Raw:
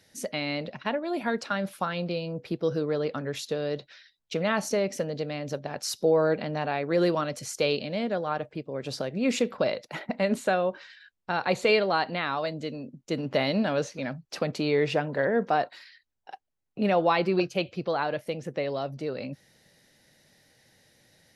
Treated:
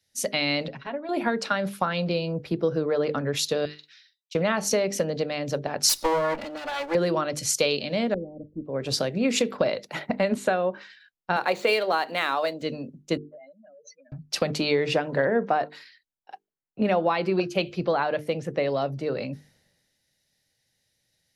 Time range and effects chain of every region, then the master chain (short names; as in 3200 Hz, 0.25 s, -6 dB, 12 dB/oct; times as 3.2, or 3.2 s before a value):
0.68–1.09 LPF 2800 Hz 6 dB/oct + comb 7.3 ms, depth 84% + compressor 2:1, threshold -40 dBFS
3.65–4.35 Bessel high-pass 2000 Hz, order 4 + compressor 2:1, threshold -46 dBFS + doubler 45 ms -8 dB
5.89–6.95 minimum comb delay 3.5 ms + low shelf 210 Hz -12 dB + upward compressor, threshold -37 dBFS
8.14–8.65 Gaussian blur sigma 23 samples + low shelf 120 Hz +9 dB + comb 3.6 ms, depth 67%
11.36–12.62 median filter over 5 samples + HPF 300 Hz
13.17–14.12 spectral contrast raised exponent 3.9 + HPF 920 Hz + compressor 10:1, threshold -44 dBFS
whole clip: notches 50/100/150/200/250/300/350/400/450 Hz; compressor 10:1, threshold -27 dBFS; three-band expander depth 70%; gain +7 dB